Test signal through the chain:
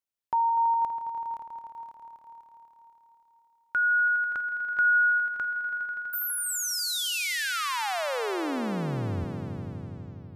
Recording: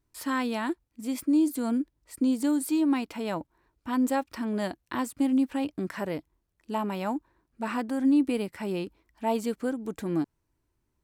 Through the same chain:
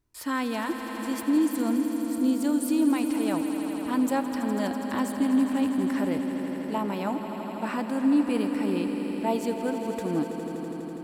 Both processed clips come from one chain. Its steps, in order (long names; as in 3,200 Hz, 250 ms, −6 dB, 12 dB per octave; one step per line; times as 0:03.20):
echo that builds up and dies away 82 ms, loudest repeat 5, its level −12 dB